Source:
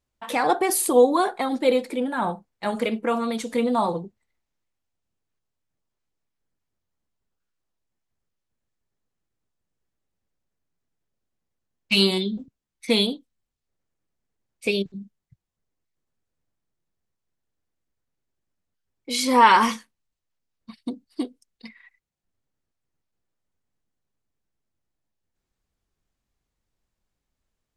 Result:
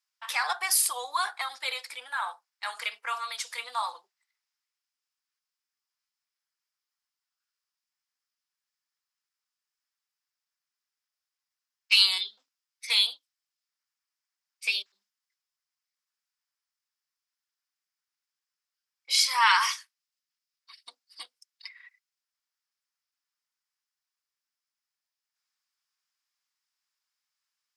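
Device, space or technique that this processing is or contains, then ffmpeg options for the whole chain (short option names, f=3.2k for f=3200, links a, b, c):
headphones lying on a table: -filter_complex "[0:a]highpass=f=1.1k:w=0.5412,highpass=f=1.1k:w=1.3066,equalizer=f=5.1k:t=o:w=0.3:g=9.5,asettb=1/sr,asplit=3[a][b][c];[a]atrim=end=19.224[d];[b]atrim=start=19.22:end=20.74,asetpts=PTS-STARTPTS,afade=t=in:d=0.004:c=qsin,afade=t=out:st=1.516:d=0.004:c=qsin,highpass=f=980:p=1[e];[c]atrim=start=20.736[f];[d][e]acrossfade=d=0.004:c1=hsin:c2=qsin[g];[g][f]acrossfade=d=0.004:c1=qsin:c2=hsin"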